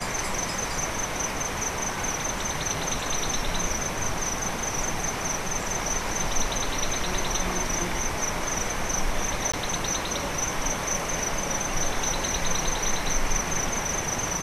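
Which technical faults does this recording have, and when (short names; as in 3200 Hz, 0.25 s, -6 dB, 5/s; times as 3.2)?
9.52–9.54 gap 15 ms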